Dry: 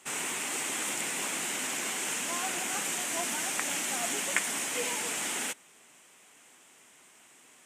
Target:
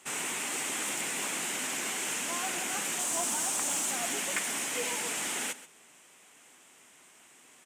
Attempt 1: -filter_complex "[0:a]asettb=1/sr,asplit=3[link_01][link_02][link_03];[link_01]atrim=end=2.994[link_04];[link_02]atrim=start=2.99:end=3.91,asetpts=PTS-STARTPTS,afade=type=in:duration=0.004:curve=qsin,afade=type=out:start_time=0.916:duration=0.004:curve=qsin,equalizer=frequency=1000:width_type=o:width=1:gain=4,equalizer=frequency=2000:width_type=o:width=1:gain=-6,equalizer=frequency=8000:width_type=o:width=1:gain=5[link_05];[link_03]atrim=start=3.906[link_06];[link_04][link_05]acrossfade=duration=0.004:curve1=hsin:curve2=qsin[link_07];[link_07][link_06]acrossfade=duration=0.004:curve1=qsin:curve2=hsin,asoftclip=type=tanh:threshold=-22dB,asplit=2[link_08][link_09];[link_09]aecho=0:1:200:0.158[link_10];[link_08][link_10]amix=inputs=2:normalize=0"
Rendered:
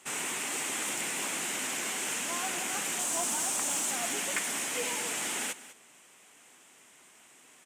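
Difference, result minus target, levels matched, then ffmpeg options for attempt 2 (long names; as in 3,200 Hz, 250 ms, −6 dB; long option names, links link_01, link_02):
echo 69 ms late
-filter_complex "[0:a]asettb=1/sr,asplit=3[link_01][link_02][link_03];[link_01]atrim=end=2.994[link_04];[link_02]atrim=start=2.99:end=3.91,asetpts=PTS-STARTPTS,afade=type=in:duration=0.004:curve=qsin,afade=type=out:start_time=0.916:duration=0.004:curve=qsin,equalizer=frequency=1000:width_type=o:width=1:gain=4,equalizer=frequency=2000:width_type=o:width=1:gain=-6,equalizer=frequency=8000:width_type=o:width=1:gain=5[link_05];[link_03]atrim=start=3.906[link_06];[link_04][link_05]acrossfade=duration=0.004:curve1=hsin:curve2=qsin[link_07];[link_07][link_06]acrossfade=duration=0.004:curve1=qsin:curve2=hsin,asoftclip=type=tanh:threshold=-22dB,asplit=2[link_08][link_09];[link_09]aecho=0:1:131:0.158[link_10];[link_08][link_10]amix=inputs=2:normalize=0"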